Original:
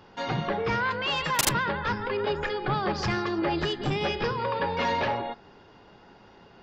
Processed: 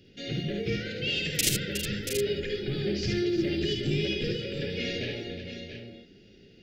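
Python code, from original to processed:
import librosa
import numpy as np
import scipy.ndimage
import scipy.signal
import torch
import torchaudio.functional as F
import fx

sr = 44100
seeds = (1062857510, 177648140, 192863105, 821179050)

p1 = scipy.signal.sosfilt(scipy.signal.cheby1(2, 1.0, [380.0, 2600.0], 'bandstop', fs=sr, output='sos'), x)
p2 = fx.quant_float(p1, sr, bits=6)
p3 = p2 + fx.echo_multitap(p2, sr, ms=(54, 74, 364, 682, 716), db=(-6.0, -5.5, -9.5, -9.5, -12.0), dry=0)
y = p3 * librosa.db_to_amplitude(-1.0)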